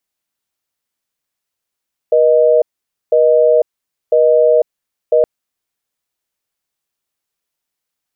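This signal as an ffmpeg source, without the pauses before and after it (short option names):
-f lavfi -i "aevalsrc='0.316*(sin(2*PI*480*t)+sin(2*PI*620*t))*clip(min(mod(t,1),0.5-mod(t,1))/0.005,0,1)':d=3.12:s=44100"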